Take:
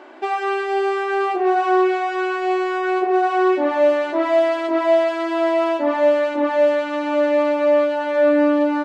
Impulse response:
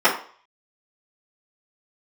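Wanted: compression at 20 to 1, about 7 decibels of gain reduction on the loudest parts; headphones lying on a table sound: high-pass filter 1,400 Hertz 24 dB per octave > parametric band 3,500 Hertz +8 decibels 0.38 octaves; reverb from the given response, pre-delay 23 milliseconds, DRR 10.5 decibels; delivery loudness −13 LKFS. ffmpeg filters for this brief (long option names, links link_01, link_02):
-filter_complex "[0:a]acompressor=threshold=-18dB:ratio=20,asplit=2[link_01][link_02];[1:a]atrim=start_sample=2205,adelay=23[link_03];[link_02][link_03]afir=irnorm=-1:irlink=0,volume=-32.5dB[link_04];[link_01][link_04]amix=inputs=2:normalize=0,highpass=frequency=1400:width=0.5412,highpass=frequency=1400:width=1.3066,equalizer=frequency=3500:width_type=o:width=0.38:gain=8,volume=19.5dB"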